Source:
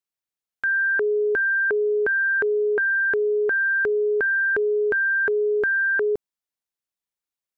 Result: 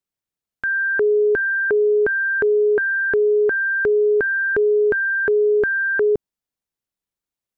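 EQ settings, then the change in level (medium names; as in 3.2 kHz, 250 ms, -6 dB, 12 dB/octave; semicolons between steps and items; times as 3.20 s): bass shelf 440 Hz +10 dB; 0.0 dB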